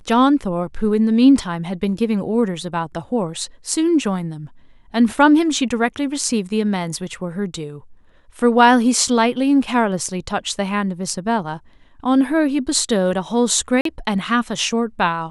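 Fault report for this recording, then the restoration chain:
0:13.81–0:13.85: drop-out 43 ms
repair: repair the gap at 0:13.81, 43 ms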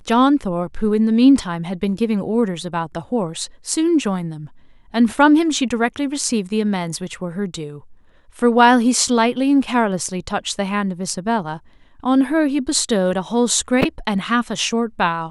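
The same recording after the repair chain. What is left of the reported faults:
none of them is left

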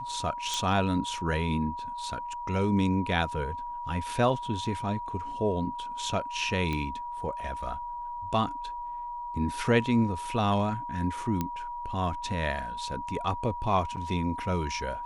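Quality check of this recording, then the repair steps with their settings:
whistle 960 Hz −34 dBFS
0:00.54: click
0:06.73: click −19 dBFS
0:11.41: click −15 dBFS
0:13.96–0:13.97: drop-out 8.3 ms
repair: click removal
notch filter 960 Hz, Q 30
repair the gap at 0:13.96, 8.3 ms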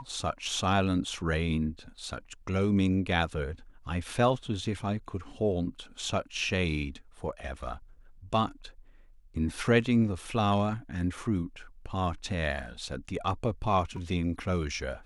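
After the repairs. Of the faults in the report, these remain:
0:00.54: click

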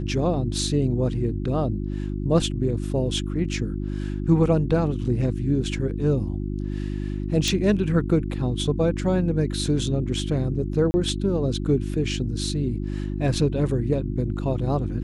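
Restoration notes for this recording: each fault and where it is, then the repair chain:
mains hum 50 Hz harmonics 7 −28 dBFS
0:07.48: click
0:10.91–0:10.94: drop-out 30 ms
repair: click removal
hum removal 50 Hz, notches 7
repair the gap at 0:10.91, 30 ms

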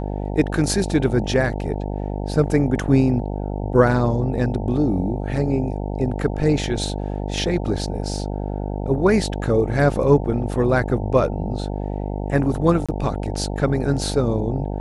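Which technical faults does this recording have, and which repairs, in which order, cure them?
mains buzz 50 Hz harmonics 18 −26 dBFS
0:12.86–0:12.89: drop-out 26 ms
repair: hum removal 50 Hz, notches 18
repair the gap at 0:12.86, 26 ms

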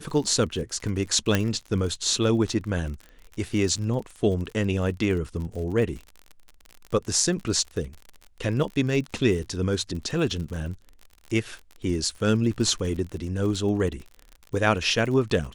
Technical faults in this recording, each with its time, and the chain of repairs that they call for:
surface crackle 50 per second −33 dBFS
0:01.35: click −7 dBFS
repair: click removal

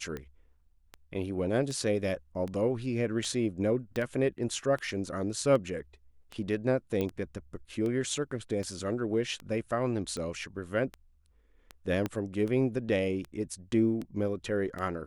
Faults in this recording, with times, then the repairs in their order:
scratch tick 78 rpm −25 dBFS
0:03.96: click −21 dBFS
0:07.01: click −19 dBFS
0:12.06: click −18 dBFS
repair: click removal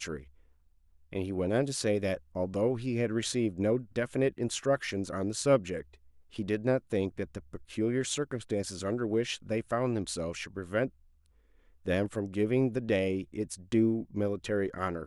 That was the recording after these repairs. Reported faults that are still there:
0:03.96: click
0:07.01: click
0:12.06: click

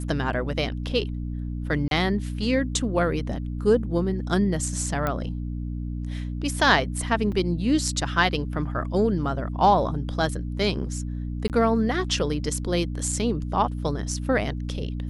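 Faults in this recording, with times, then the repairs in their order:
mains hum 60 Hz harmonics 5 −30 dBFS
0:01.88–0:01.91: drop-out 32 ms
0:05.07: click −13 dBFS
0:07.32: drop-out 3.7 ms
0:11.48–0:11.50: drop-out 18 ms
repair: click removal
hum removal 60 Hz, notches 5
repair the gap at 0:01.88, 32 ms
repair the gap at 0:07.32, 3.7 ms
repair the gap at 0:11.48, 18 ms

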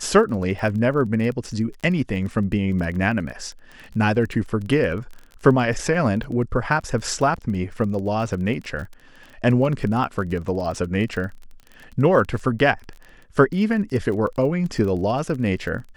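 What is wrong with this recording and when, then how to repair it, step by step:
surface crackle 25 per second −30 dBFS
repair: click removal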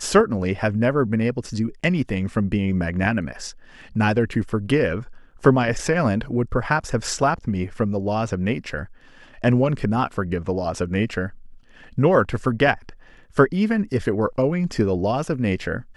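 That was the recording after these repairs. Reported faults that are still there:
none of them is left

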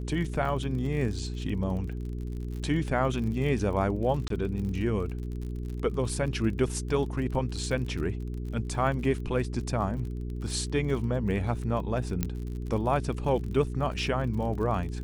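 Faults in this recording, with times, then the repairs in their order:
surface crackle 42 per second −36 dBFS
mains hum 60 Hz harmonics 7 −34 dBFS
0:04.28–0:04.30: drop-out 23 ms
0:12.23: click −13 dBFS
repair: click removal
hum removal 60 Hz, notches 7
repair the gap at 0:04.28, 23 ms

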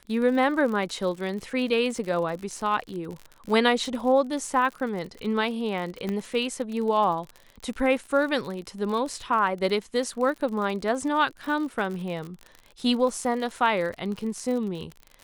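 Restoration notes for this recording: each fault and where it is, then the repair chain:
surface crackle 56 per second −32 dBFS
0:06.09: click −17 dBFS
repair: click removal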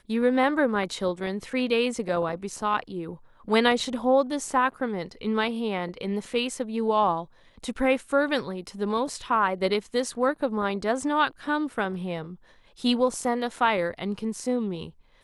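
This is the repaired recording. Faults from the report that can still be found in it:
none of them is left

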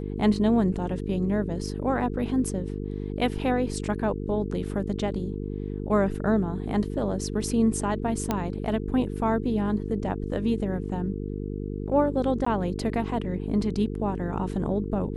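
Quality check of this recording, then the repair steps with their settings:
mains buzz 50 Hz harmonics 9 −32 dBFS
0:08.31: click −11 dBFS
0:12.45–0:12.46: drop-out 14 ms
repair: click removal
hum removal 50 Hz, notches 9
repair the gap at 0:12.45, 14 ms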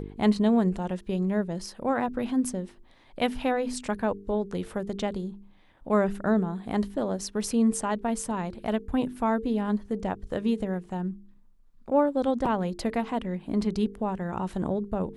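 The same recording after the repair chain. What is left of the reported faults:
none of them is left

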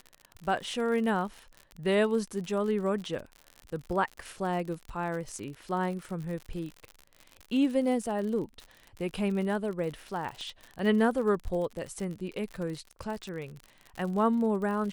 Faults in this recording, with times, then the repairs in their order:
surface crackle 55 per second −36 dBFS
0:10.41: click −31 dBFS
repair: click removal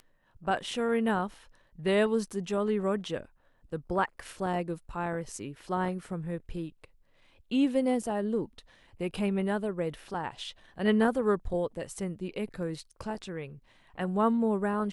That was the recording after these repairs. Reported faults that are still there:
0:10.41: click

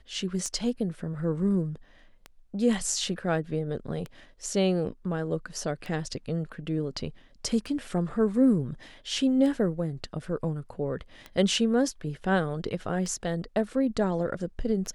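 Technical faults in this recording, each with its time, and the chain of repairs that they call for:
scratch tick 33 1/3 rpm −23 dBFS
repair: click removal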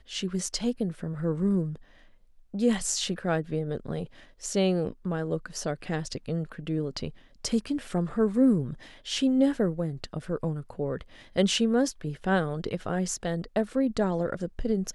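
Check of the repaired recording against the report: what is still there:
none of them is left

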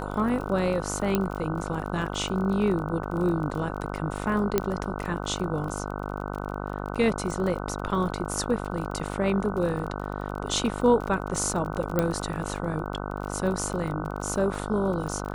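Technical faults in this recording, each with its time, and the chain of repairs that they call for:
mains buzz 50 Hz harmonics 30 −33 dBFS
surface crackle 32 per second −33 dBFS
0:01.15: click −10 dBFS
0:04.58: click −8 dBFS
0:11.99: click −10 dBFS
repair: click removal
hum removal 50 Hz, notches 30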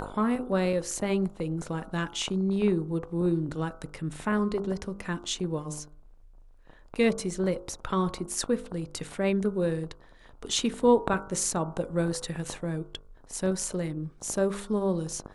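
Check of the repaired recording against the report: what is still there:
none of them is left

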